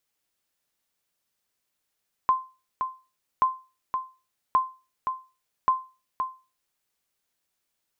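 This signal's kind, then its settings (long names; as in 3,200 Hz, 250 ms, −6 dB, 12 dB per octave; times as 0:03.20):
ping with an echo 1,040 Hz, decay 0.31 s, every 1.13 s, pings 4, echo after 0.52 s, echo −7 dB −13 dBFS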